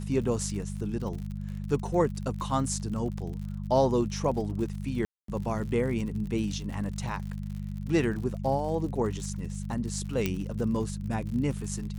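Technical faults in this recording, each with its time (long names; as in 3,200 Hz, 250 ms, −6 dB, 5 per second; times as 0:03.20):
surface crackle 64 per second −37 dBFS
mains hum 50 Hz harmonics 4 −35 dBFS
0:05.05–0:05.28: drop-out 233 ms
0:10.26: click −13 dBFS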